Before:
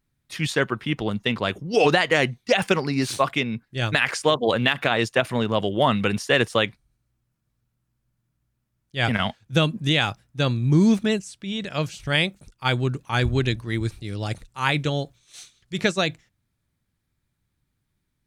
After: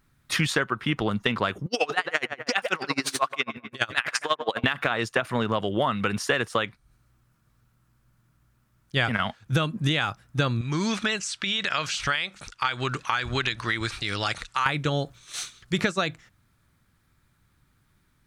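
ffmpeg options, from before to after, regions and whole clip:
ffmpeg -i in.wav -filter_complex "[0:a]asettb=1/sr,asplit=3[link_01][link_02][link_03];[link_01]atrim=end=1.664[link_04];[link_02]atrim=start=1.66:end=4.64,asetpts=PTS-STARTPTS,afade=type=in:duration=0.004:curve=qsin,afade=type=out:start_time=2.976:duration=0.004:curve=qsin,highpass=frequency=690:poles=1,asplit=2[link_05][link_06];[link_06]adelay=134,lowpass=frequency=2200:poles=1,volume=-10dB,asplit=2[link_07][link_08];[link_08]adelay=134,lowpass=frequency=2200:poles=1,volume=0.36,asplit=2[link_09][link_10];[link_10]adelay=134,lowpass=frequency=2200:poles=1,volume=0.36,asplit=2[link_11][link_12];[link_12]adelay=134,lowpass=frequency=2200:poles=1,volume=0.36[link_13];[link_05][link_07][link_09][link_11][link_13]amix=inputs=5:normalize=0,atrim=end_sample=131418,aeval=exprs='val(0)*pow(10,-27*(0.5-0.5*cos(2*PI*12*n/s))/20)':channel_layout=same[link_14];[link_03]atrim=start=4.636[link_15];[link_04][link_14]acrossfade=duration=0.004:curve1=hsin:curve2=qsin[link_16];[link_16][link_15]acrossfade=duration=0.004:curve1=qsin:curve2=hsin,asettb=1/sr,asplit=3[link_17][link_18][link_19];[link_17]atrim=end=10.614[link_20];[link_18]atrim=start=10.61:end=14.66,asetpts=PTS-STARTPTS,afade=type=in:duration=0.004:curve=qsin,afade=type=out:start_time=4.046:duration=0.004:curve=qsin,tiltshelf=frequency=720:gain=-9.5,acompressor=threshold=-35dB:ratio=2.5:attack=3.2:release=140:knee=1:detection=peak,lowpass=6000[link_21];[link_19]atrim=start=14.656[link_22];[link_20][link_21]acrossfade=duration=0.004:curve1=hsin:curve2=qsin[link_23];[link_23][link_22]acrossfade=duration=0.004:curve1=qsin:curve2=hsin,equalizer=frequency=1300:width=1.6:gain=8,acompressor=threshold=-30dB:ratio=12,volume=9dB" out.wav

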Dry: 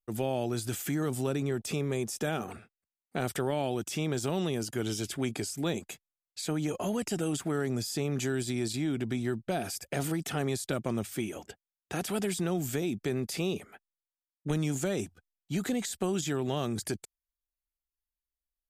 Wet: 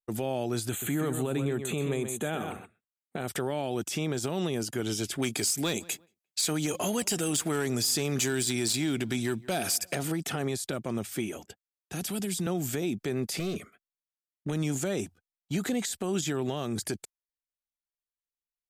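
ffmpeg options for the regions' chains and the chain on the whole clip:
ffmpeg -i in.wav -filter_complex "[0:a]asettb=1/sr,asplit=3[link_01][link_02][link_03];[link_01]atrim=end=0.694[link_04];[link_02]atrim=start=0.69:end=3.28,asetpts=PTS-STARTPTS,afade=type=in:duration=0.004:curve=qsin,afade=type=out:start_time=2.586:duration=0.004:curve=qsin,asuperstop=centerf=5200:order=8:qfactor=2.5,aecho=1:1:128:0.355,atrim=end_sample=114219[link_05];[link_03]atrim=start=3.276[link_06];[link_04][link_05]acrossfade=duration=0.004:curve1=hsin:curve2=qsin[link_07];[link_07][link_06]acrossfade=duration=0.004:curve1=qsin:curve2=hsin,asettb=1/sr,asplit=3[link_08][link_09][link_10];[link_08]atrim=end=5.224[link_11];[link_09]atrim=start=5.22:end=9.95,asetpts=PTS-STARTPTS,afade=type=in:duration=0.004:curve=qsin,afade=type=out:start_time=4.726:duration=0.004:curve=qsin,highshelf=frequency=2200:gain=10.5,asoftclip=type=hard:threshold=-22dB,asplit=2[link_12][link_13];[link_13]adelay=175,lowpass=frequency=2200:poles=1,volume=-23dB,asplit=2[link_14][link_15];[link_15]adelay=175,lowpass=frequency=2200:poles=1,volume=0.3[link_16];[link_12][link_14][link_16]amix=inputs=3:normalize=0,atrim=end_sample=208593[link_17];[link_10]atrim=start=9.946[link_18];[link_11][link_17]acrossfade=duration=0.004:curve1=hsin:curve2=qsin[link_19];[link_19][link_18]acrossfade=duration=0.004:curve1=qsin:curve2=hsin,asettb=1/sr,asplit=3[link_20][link_21][link_22];[link_20]atrim=end=11.364[link_23];[link_21]atrim=start=11.36:end=12.47,asetpts=PTS-STARTPTS,afade=type=in:duration=0.004:curve=qsin,afade=type=out:start_time=1.106:duration=0.004:curve=qsin,acrossover=split=270|3000[link_24][link_25][link_26];[link_25]acompressor=threshold=-51dB:ratio=2:attack=3.2:release=140:knee=2.83:detection=peak[link_27];[link_24][link_27][link_26]amix=inputs=3:normalize=0,equalizer=frequency=12000:width_type=o:width=0.22:gain=3[link_28];[link_22]atrim=start=12.466[link_29];[link_23][link_28]acrossfade=duration=0.004:curve1=hsin:curve2=qsin[link_30];[link_30][link_29]acrossfade=duration=0.004:curve1=qsin:curve2=hsin,asettb=1/sr,asplit=3[link_31][link_32][link_33];[link_31]atrim=end=13.394[link_34];[link_32]atrim=start=13.39:end=14.47,asetpts=PTS-STARTPTS,afade=type=in:duration=0.004:curve=qsin,afade=type=out:start_time=1.076:duration=0.004:curve=qsin,aecho=1:1:0.9:0.34,atrim=end_sample=47628,aeval=exprs='clip(val(0),-1,0.0224)':channel_layout=same,asuperstop=centerf=870:order=8:qfactor=2.7[link_35];[link_33]atrim=start=14.466[link_36];[link_34][link_35]acrossfade=duration=0.004:curve1=hsin:curve2=qsin[link_37];[link_37][link_36]acrossfade=duration=0.004:curve1=qsin:curve2=hsin,lowshelf=frequency=65:gain=-8.5,agate=range=-12dB:threshold=-48dB:ratio=16:detection=peak,alimiter=limit=-23.5dB:level=0:latency=1:release=127,volume=3dB" out.wav

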